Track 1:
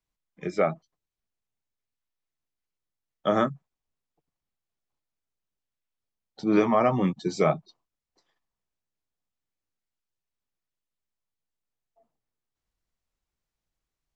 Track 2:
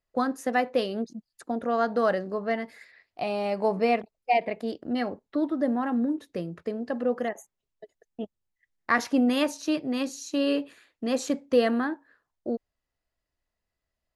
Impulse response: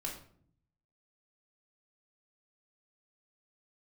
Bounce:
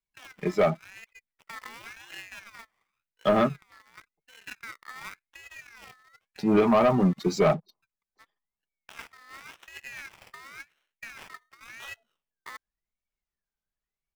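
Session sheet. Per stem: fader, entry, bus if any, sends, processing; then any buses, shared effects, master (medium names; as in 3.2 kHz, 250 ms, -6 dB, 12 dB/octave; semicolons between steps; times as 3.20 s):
-4.5 dB, 0.00 s, no send, spectral gate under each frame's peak -30 dB strong; comb 4.9 ms, depth 36%
-16.0 dB, 0.00 s, no send, compressor with a negative ratio -30 dBFS, ratio -1; sample-rate reducer 2.5 kHz, jitter 0%; ring modulator with a swept carrier 1.9 kHz, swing 20%, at 0.92 Hz; auto duck -11 dB, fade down 1.05 s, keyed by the first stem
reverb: none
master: waveshaping leveller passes 2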